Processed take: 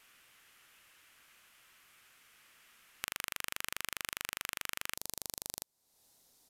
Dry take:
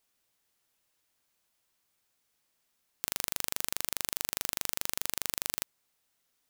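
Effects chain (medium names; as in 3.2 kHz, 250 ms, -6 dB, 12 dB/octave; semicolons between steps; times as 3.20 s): high-order bell 1.9 kHz +9.5 dB, from 4.95 s -8.5 dB; compression 2.5:1, threshold -53 dBFS, peak gain reduction 19 dB; resampled via 32 kHz; trim +11.5 dB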